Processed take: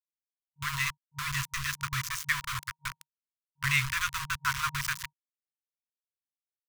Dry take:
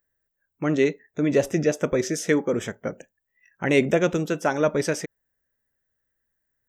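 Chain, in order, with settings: repeats whose band climbs or falls 536 ms, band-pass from 210 Hz, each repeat 1.4 oct, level -11.5 dB; small samples zeroed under -24.5 dBFS; FFT band-reject 140–940 Hz

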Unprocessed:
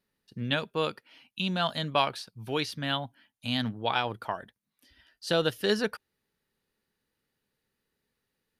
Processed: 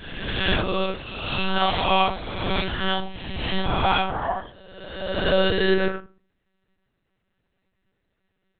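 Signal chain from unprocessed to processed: reverse spectral sustain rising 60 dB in 1.47 s; simulated room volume 200 m³, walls furnished, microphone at 1.8 m; monotone LPC vocoder at 8 kHz 190 Hz

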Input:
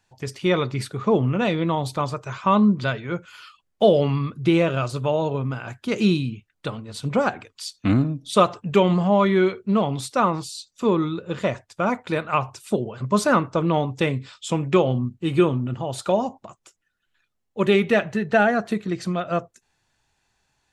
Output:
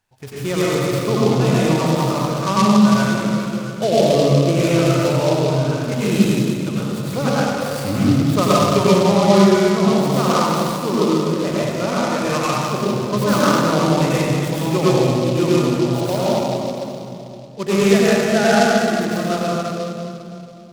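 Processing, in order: reverberation RT60 2.8 s, pre-delay 87 ms, DRR -8.5 dB; delay time shaken by noise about 3.8 kHz, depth 0.045 ms; trim -4.5 dB

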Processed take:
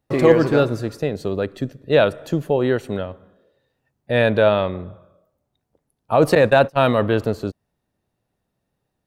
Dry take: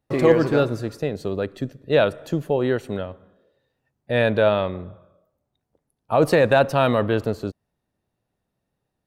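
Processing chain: 6.35–6.99 s: gate -19 dBFS, range -26 dB; trim +2.5 dB

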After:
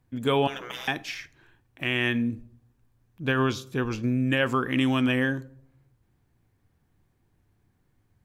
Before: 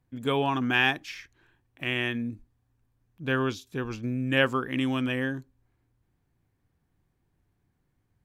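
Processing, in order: 0.47–0.88 s: spectral gate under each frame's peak -20 dB weak; peak limiter -18 dBFS, peak gain reduction 8 dB; reverberation RT60 0.70 s, pre-delay 5 ms, DRR 15 dB; trim +4.5 dB

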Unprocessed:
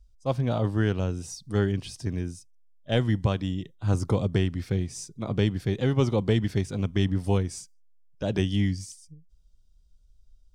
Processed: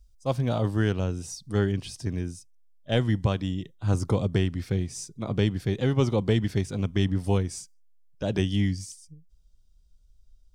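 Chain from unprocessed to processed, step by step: treble shelf 6.1 kHz +8.5 dB, from 0.92 s +2 dB

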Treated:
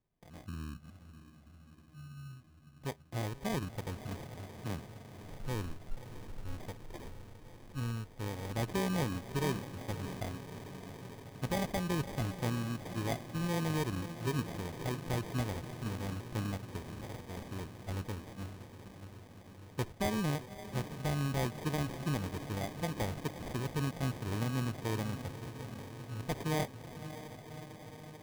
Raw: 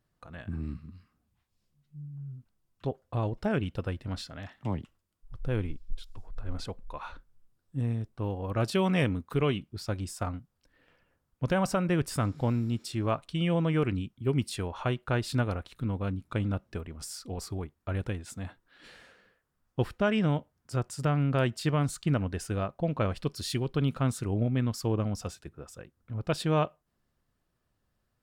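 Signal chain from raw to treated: echo that smears into a reverb 605 ms, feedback 74%, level -11.5 dB; sample-and-hold 32×; trim -7 dB

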